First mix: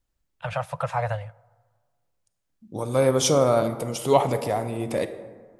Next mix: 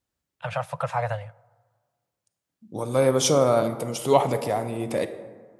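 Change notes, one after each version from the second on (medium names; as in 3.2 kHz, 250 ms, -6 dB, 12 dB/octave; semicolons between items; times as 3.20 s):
master: add high-pass 96 Hz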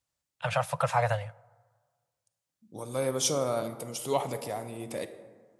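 second voice -10.0 dB; master: add treble shelf 3.6 kHz +8.5 dB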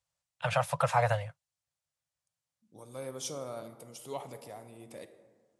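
first voice: send off; second voice -11.0 dB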